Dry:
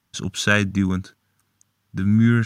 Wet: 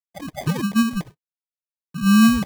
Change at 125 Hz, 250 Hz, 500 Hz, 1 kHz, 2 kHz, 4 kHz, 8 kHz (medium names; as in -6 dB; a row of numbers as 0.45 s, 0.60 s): -5.0 dB, +3.5 dB, -7.0 dB, +5.0 dB, -5.5 dB, 0.0 dB, +1.0 dB